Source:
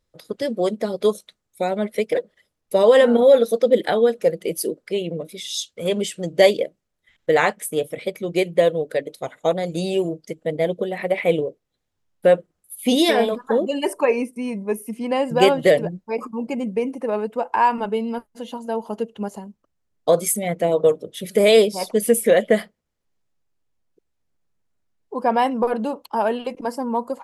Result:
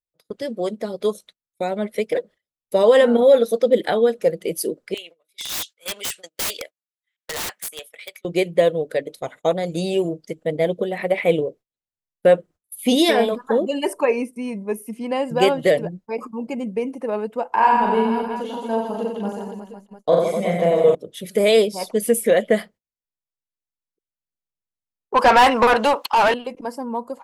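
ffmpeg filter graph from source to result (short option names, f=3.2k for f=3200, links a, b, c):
-filter_complex "[0:a]asettb=1/sr,asplit=3[a][b][c];[a]atrim=end=4.944[d];[b]atrim=start=4.94:end=8.25,asetpts=PTS-STARTPTS,afade=t=in:d=0.004:c=qsin,afade=t=out:st=3.306:d=0.004:c=qsin,highpass=1.4k,aeval=exprs='(mod(15*val(0)+1,2)-1)/15':c=same[e];[c]atrim=start=8.246[f];[d][e]acrossfade=d=0.004:c1=hsin:c2=qsin[g];[g][f]acrossfade=d=0.004:c1=qsin:c2=hsin,asettb=1/sr,asplit=3[h][i][j];[h]atrim=end=17.484[k];[i]atrim=start=17.48:end=20.95,asetpts=PTS-STARTPTS,afade=t=in:d=0.004:c=qsin,afade=t=out:st=3.466:d=0.004:c=qsin,acrossover=split=3900[l][m];[m]acompressor=threshold=-50dB:ratio=4:attack=1:release=60[n];[l][n]amix=inputs=2:normalize=0,aecho=1:1:40|92|159.6|247.5|361.7|510.2|703.3:0.794|0.631|0.501|0.398|0.316|0.251|0.2,atrim=end_sample=153027[o];[j]atrim=start=20.946[p];[k][o]acrossfade=d=0.004:c1=hsin:c2=qsin[q];[q][p]acrossfade=d=0.004:c1=qsin:c2=hsin,asettb=1/sr,asplit=3[r][s][t];[r]atrim=end=25.144[u];[s]atrim=start=25.14:end=26.34,asetpts=PTS-STARTPTS,afade=t=in:d=0.004:c=qsin,afade=t=out:st=1.196:d=0.004:c=qsin,highpass=f=330:p=1,tiltshelf=f=720:g=-6.5,asplit=2[v][w];[w]highpass=f=720:p=1,volume=25dB,asoftclip=type=tanh:threshold=-7dB[x];[v][x]amix=inputs=2:normalize=0,lowpass=f=2.8k:p=1,volume=-6dB[y];[t]atrim=start=26.336[z];[u][y]acrossfade=d=0.004:c1=hsin:c2=qsin[aa];[aa][z]acrossfade=d=0.004:c1=qsin:c2=hsin,agate=range=-23dB:threshold=-41dB:ratio=16:detection=peak,dynaudnorm=f=290:g=11:m=11.5dB,volume=-3.5dB"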